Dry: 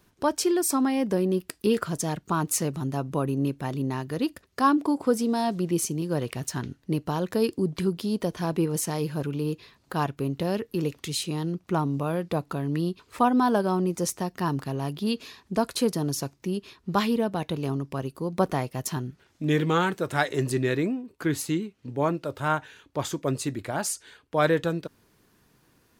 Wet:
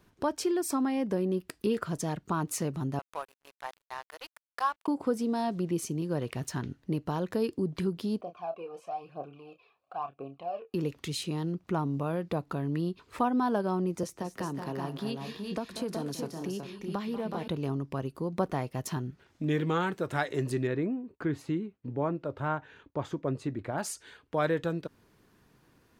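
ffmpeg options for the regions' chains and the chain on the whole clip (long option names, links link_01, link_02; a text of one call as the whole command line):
ffmpeg -i in.wav -filter_complex "[0:a]asettb=1/sr,asplit=3[link_01][link_02][link_03];[link_01]atrim=end=2.994[link_04];[link_02]atrim=start=2.99:end=4.88,asetpts=PTS-STARTPTS,afade=type=in:duration=0.004:curve=qsin,afade=type=out:start_time=1.886:duration=0.004:curve=qsin,highpass=frequency=650:width=0.5412,highpass=frequency=650:width=1.3066,aeval=exprs='sgn(val(0))*max(abs(val(0))-0.00841,0)':channel_layout=same[link_05];[link_03]atrim=start=4.876[link_06];[link_04][link_05]acrossfade=duration=0.004:curve1=hsin:curve2=qsin[link_07];[link_07][link_06]acrossfade=duration=0.004:curve1=qsin:curve2=hsin,asettb=1/sr,asplit=3[link_08][link_09][link_10];[link_08]atrim=end=8.214[link_11];[link_09]atrim=start=8.21:end=10.74,asetpts=PTS-STARTPTS,afade=type=in:duration=0.004:curve=qsin,afade=type=out:start_time=2.526:duration=0.004:curve=qsin,aphaser=in_gain=1:out_gain=1:delay=2.5:decay=0.62:speed=1:type=triangular,asplit=3[link_12][link_13][link_14];[link_12]bandpass=frequency=730:width_type=q:width=8,volume=0dB[link_15];[link_13]bandpass=frequency=1090:width_type=q:width=8,volume=-6dB[link_16];[link_14]bandpass=frequency=2440:width_type=q:width=8,volume=-9dB[link_17];[link_15][link_16][link_17]amix=inputs=3:normalize=0,asplit=2[link_18][link_19];[link_19]adelay=29,volume=-9dB[link_20];[link_18][link_20]amix=inputs=2:normalize=0,atrim=end_sample=111573[link_21];[link_10]atrim=start=10.736[link_22];[link_11][link_21]acrossfade=duration=0.004:curve1=hsin:curve2=qsin[link_23];[link_23][link_22]acrossfade=duration=0.004:curve1=qsin:curve2=hsin,asettb=1/sr,asplit=3[link_24][link_25][link_26];[link_24]atrim=end=14.034[link_27];[link_25]atrim=start=14.03:end=17.48,asetpts=PTS-STARTPTS,afade=type=in:duration=0.004:curve=qsin,afade=type=out:start_time=3.446:duration=0.004:curve=qsin,acrossover=split=190|540[link_28][link_29][link_30];[link_28]acompressor=threshold=-44dB:ratio=4[link_31];[link_29]acompressor=threshold=-34dB:ratio=4[link_32];[link_30]acompressor=threshold=-35dB:ratio=4[link_33];[link_31][link_32][link_33]amix=inputs=3:normalize=0,aecho=1:1:189|220|239|372|402:0.211|0.133|0.119|0.501|0.266,atrim=end_sample=152145[link_34];[link_26]atrim=start=17.476[link_35];[link_27][link_34]acrossfade=duration=0.004:curve1=hsin:curve2=qsin[link_36];[link_36][link_35]acrossfade=duration=0.004:curve1=qsin:curve2=hsin,asettb=1/sr,asplit=3[link_37][link_38][link_39];[link_37]atrim=end=20.674[link_40];[link_38]atrim=start=20.67:end=23.78,asetpts=PTS-STARTPTS,afade=type=in:duration=0.004:curve=qsin,afade=type=out:start_time=3.106:duration=0.004:curve=qsin,lowpass=frequency=1600:poles=1,agate=range=-33dB:threshold=-53dB:ratio=3:release=100:detection=peak,acompressor=mode=upward:threshold=-44dB:ratio=2.5:attack=3.2:release=140:knee=2.83:detection=peak[link_41];[link_39]atrim=start=23.776[link_42];[link_40][link_41]acrossfade=duration=0.004:curve1=hsin:curve2=qsin[link_43];[link_43][link_42]acrossfade=duration=0.004:curve1=qsin:curve2=hsin,highshelf=frequency=4200:gain=-7.5,acompressor=threshold=-34dB:ratio=1.5" out.wav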